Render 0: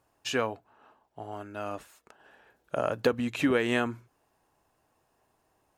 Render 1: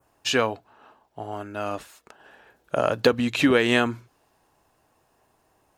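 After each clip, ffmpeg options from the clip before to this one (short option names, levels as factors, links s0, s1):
-af "adynamicequalizer=threshold=0.00316:dfrequency=4100:dqfactor=1.2:tfrequency=4100:tqfactor=1.2:attack=5:release=100:ratio=0.375:range=3:mode=boostabove:tftype=bell,volume=2"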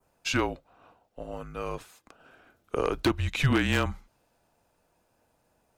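-af "afreqshift=-150,aeval=exprs='0.282*(abs(mod(val(0)/0.282+3,4)-2)-1)':c=same,volume=0.596"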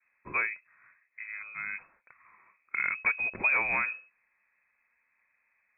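-af "lowpass=f=2200:t=q:w=0.5098,lowpass=f=2200:t=q:w=0.6013,lowpass=f=2200:t=q:w=0.9,lowpass=f=2200:t=q:w=2.563,afreqshift=-2600,volume=0.708"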